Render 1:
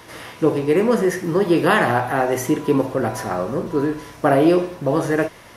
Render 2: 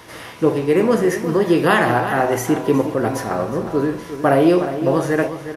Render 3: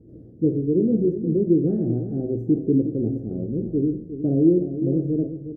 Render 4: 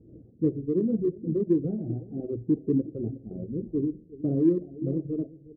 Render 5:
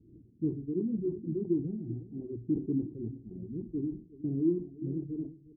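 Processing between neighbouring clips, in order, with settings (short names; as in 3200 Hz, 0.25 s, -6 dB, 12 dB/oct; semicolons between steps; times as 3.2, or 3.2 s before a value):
outdoor echo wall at 62 m, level -10 dB; gain +1 dB
inverse Chebyshev low-pass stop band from 930 Hz, stop band 50 dB
Wiener smoothing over 15 samples; reverb removal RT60 1.6 s; gain -4 dB
EQ curve 370 Hz 0 dB, 560 Hz -20 dB, 960 Hz -7 dB, 1500 Hz -22 dB; sustainer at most 140 dB/s; gain -6 dB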